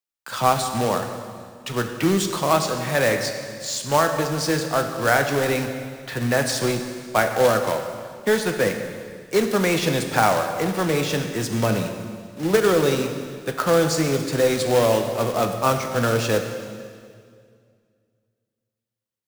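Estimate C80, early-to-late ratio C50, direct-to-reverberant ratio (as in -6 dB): 8.0 dB, 7.0 dB, 5.0 dB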